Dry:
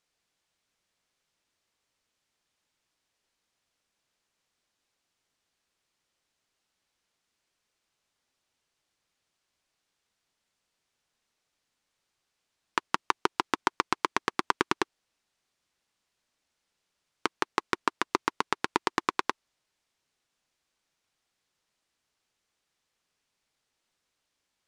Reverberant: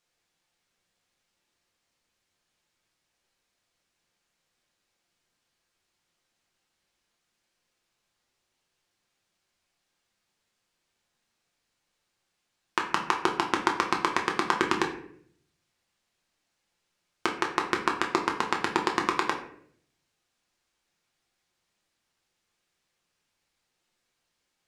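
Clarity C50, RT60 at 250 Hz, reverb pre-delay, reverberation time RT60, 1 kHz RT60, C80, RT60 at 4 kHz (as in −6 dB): 8.0 dB, 0.85 s, 6 ms, 0.65 s, 0.55 s, 11.5 dB, 0.40 s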